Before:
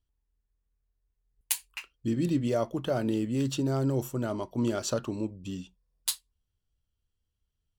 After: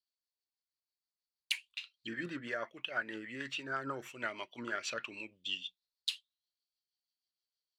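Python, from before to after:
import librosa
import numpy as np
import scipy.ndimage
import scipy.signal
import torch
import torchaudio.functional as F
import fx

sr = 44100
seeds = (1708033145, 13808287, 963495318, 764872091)

y = fx.rotary(x, sr, hz=6.3)
y = fx.auto_wah(y, sr, base_hz=750.0, top_hz=4500.0, q=9.0, full_db=-20.5, direction='down')
y = fx.rider(y, sr, range_db=4, speed_s=0.5)
y = y * librosa.db_to_amplitude(17.0)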